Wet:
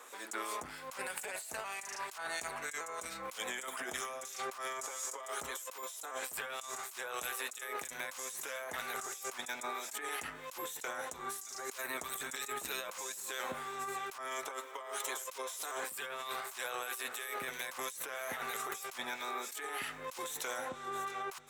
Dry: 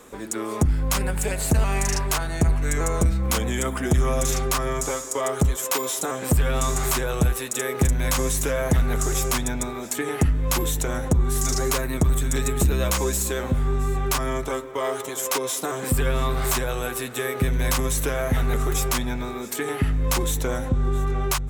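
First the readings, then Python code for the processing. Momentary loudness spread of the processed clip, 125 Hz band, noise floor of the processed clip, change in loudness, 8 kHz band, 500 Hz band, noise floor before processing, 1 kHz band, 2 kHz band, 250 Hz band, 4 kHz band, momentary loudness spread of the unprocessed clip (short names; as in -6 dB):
3 LU, -40.0 dB, -49 dBFS, -16.0 dB, -14.5 dB, -17.5 dB, -32 dBFS, -10.0 dB, -8.5 dB, -26.0 dB, -11.5 dB, 5 LU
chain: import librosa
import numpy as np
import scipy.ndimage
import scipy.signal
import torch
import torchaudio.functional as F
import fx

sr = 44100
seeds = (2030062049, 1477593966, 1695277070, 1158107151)

y = scipy.signal.sosfilt(scipy.signal.butter(2, 820.0, 'highpass', fs=sr, output='sos'), x)
y = fx.harmonic_tremolo(y, sr, hz=3.1, depth_pct=50, crossover_hz=2200.0)
y = fx.over_compress(y, sr, threshold_db=-38.0, ratio=-1.0)
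y = y * 10.0 ** (-4.0 / 20.0)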